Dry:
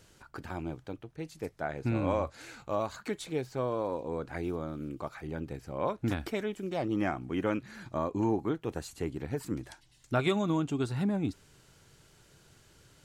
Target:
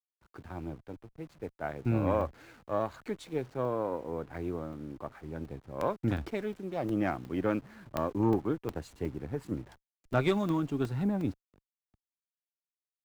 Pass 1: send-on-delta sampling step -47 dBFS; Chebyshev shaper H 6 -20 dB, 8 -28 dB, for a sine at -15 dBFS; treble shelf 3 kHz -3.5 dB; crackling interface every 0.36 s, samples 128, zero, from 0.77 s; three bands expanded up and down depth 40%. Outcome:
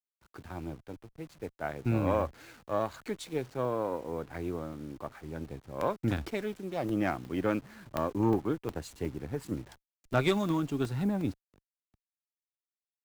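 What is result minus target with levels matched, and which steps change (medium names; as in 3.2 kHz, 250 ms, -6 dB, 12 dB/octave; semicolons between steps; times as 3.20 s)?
8 kHz band +6.0 dB
change: treble shelf 3 kHz -11 dB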